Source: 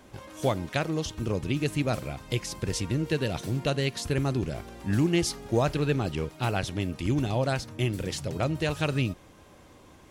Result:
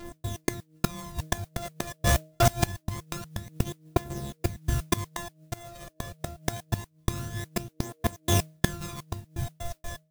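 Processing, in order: sample sorter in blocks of 128 samples; shoebox room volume 74 m³, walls mixed, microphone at 0.83 m; step gate "x.x.x..xxx.x." 125 bpm -60 dB; phaser 0.25 Hz, delay 1.8 ms, feedback 59%; AGC gain up to 9 dB; 2.06–2.46 hard clip -18 dBFS, distortion -26 dB; 7.81–8.54 low shelf 410 Hz -9.5 dB; de-hum 156.7 Hz, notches 4; flipped gate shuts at -11 dBFS, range -24 dB; 5.41–5.9 compressor 2:1, threshold -43 dBFS, peak gain reduction 13 dB; tone controls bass +3 dB, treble +8 dB; modulation noise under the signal 21 dB

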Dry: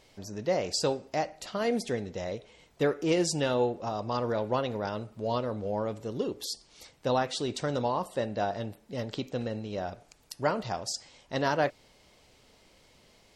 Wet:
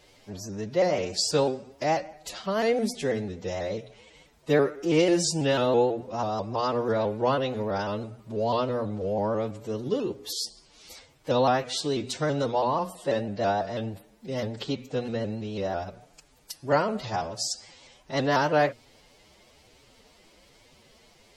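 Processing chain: time stretch by phase-locked vocoder 1.6×; notches 60/120/180/240 Hz; shaped vibrato saw up 6.1 Hz, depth 100 cents; gain +4 dB

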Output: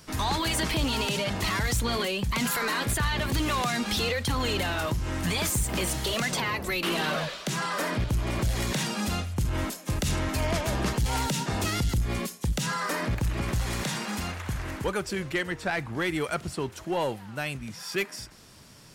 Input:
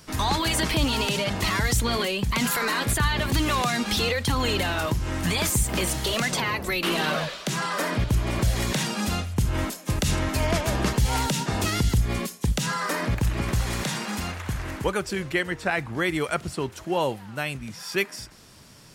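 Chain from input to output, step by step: soft clip -18 dBFS, distortion -17 dB; gain -1.5 dB

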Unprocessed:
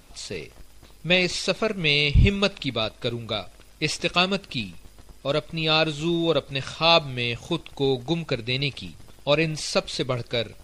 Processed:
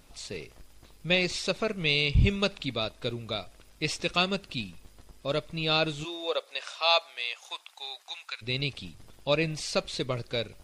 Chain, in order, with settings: 6.03–8.41 HPF 440 Hz -> 1100 Hz 24 dB/oct; gain -5 dB

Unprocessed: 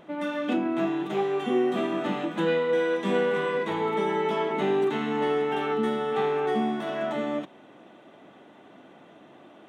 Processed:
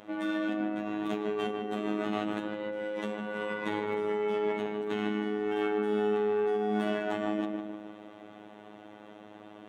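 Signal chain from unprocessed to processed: negative-ratio compressor -30 dBFS, ratio -1; darkening echo 0.153 s, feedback 57%, low-pass 1700 Hz, level -3 dB; robotiser 105 Hz; gain -2 dB

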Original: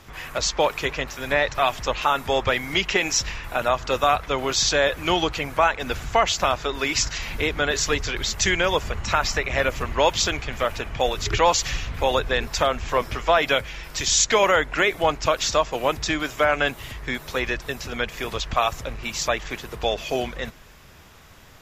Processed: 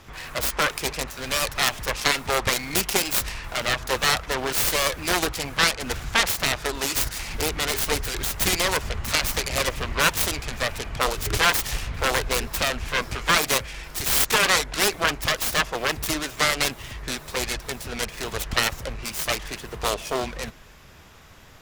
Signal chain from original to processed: self-modulated delay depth 0.92 ms

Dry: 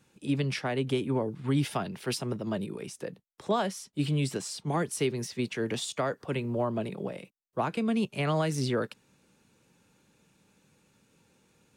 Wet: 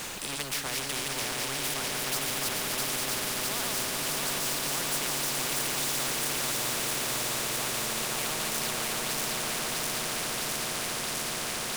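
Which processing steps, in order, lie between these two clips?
regenerating reverse delay 0.329 s, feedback 82%, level -2 dB; low shelf 250 Hz -9 dB; reverse; upward compressor, threshold -35 dBFS; reverse; power-law curve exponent 0.7; added noise pink -54 dBFS; on a send: swelling echo 0.143 s, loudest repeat 5, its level -10.5 dB; on the sum: spectral compressor 4:1; gain -6 dB

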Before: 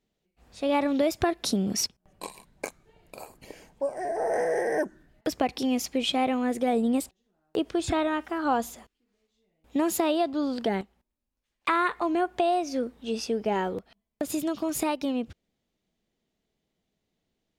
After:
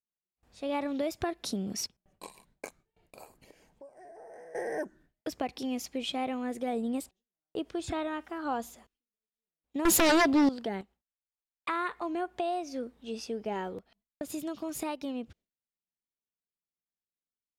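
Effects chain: gate with hold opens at -48 dBFS; 3.38–4.55 compressor 2.5:1, threshold -48 dBFS, peak gain reduction 16 dB; 9.85–10.49 sine folder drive 13 dB, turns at -11.5 dBFS; gain -7.5 dB

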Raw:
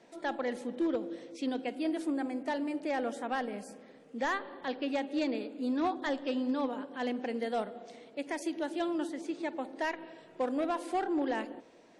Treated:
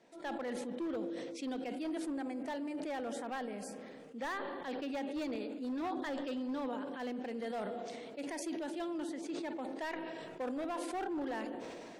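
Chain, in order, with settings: hard clip -28 dBFS, distortion -17 dB; sustainer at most 22 dB/s; gain -6 dB

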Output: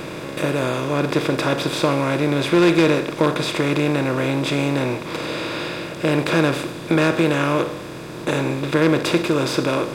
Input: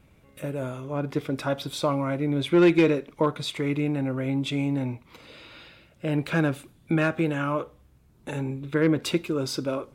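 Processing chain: per-bin compression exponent 0.4; gain +1 dB

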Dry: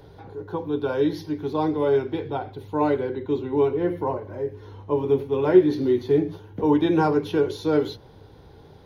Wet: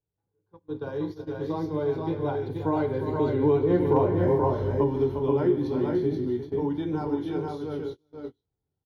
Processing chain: recorder AGC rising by 5.8 dB/s; Doppler pass-by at 4.01, 10 m/s, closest 4.8 m; notch 2600 Hz, Q 11; on a send: tapped delay 42/149/351/384/477/501 ms -16.5/-18/-10.5/-18.5/-4/-9 dB; on the sum: gate -38 dBFS, range -30 dB; tone controls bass +6 dB, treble +7 dB; compressor 2:1, threshold -24 dBFS, peak gain reduction 6 dB; hard clip -14 dBFS, distortion -46 dB; high shelf 3900 Hz -10 dB; gain +3 dB

